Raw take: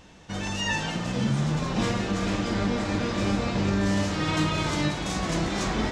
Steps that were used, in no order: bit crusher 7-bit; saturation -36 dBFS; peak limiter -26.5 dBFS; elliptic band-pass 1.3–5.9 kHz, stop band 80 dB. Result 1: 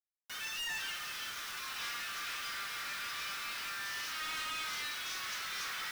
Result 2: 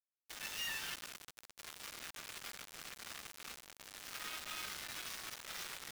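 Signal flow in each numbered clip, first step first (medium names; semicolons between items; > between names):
elliptic band-pass > bit crusher > saturation > peak limiter; peak limiter > saturation > elliptic band-pass > bit crusher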